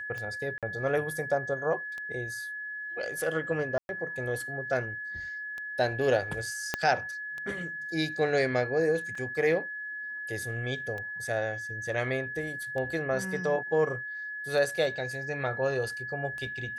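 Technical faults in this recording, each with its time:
tick 33 1/3 rpm -25 dBFS
whine 1.7 kHz -35 dBFS
0.58–0.63 s: dropout 47 ms
3.78–3.89 s: dropout 111 ms
6.74 s: pop -12 dBFS
9.15 s: dropout 4.2 ms

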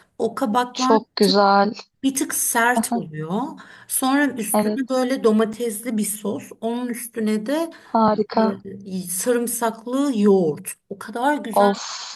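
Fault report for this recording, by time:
5.53–5.54 s: dropout 5.9 ms

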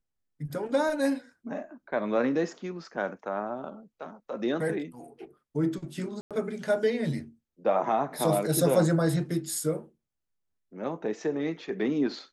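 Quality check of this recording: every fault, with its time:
6.21–6.31 s: dropout 97 ms

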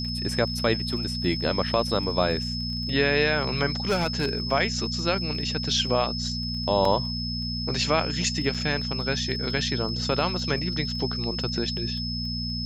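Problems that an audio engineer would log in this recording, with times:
crackle 13 per s
hum 60 Hz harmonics 4 -32 dBFS
whine 5.2 kHz -31 dBFS
3.87–4.33 s: clipped -19 dBFS
6.85 s: dropout 3.1 ms
8.54–8.55 s: dropout 5.7 ms

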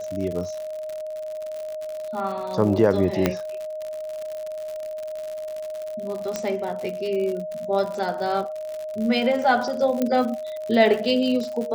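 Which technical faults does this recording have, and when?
crackle 95 per s -29 dBFS
whine 620 Hz -29 dBFS
3.26 s: pop -5 dBFS
6.36 s: pop -11 dBFS
10.02 s: pop -10 dBFS

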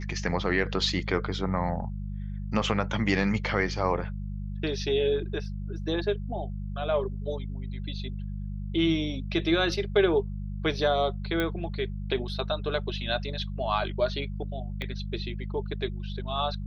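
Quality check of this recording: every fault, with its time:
hum 50 Hz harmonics 4 -34 dBFS
11.40 s: pop -15 dBFS
14.82 s: pop -22 dBFS

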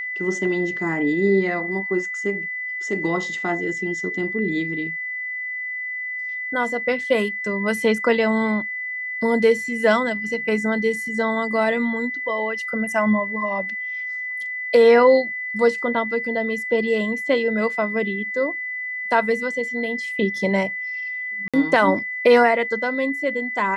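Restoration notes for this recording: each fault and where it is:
whine 2 kHz -26 dBFS
21.48–21.54 s: dropout 56 ms

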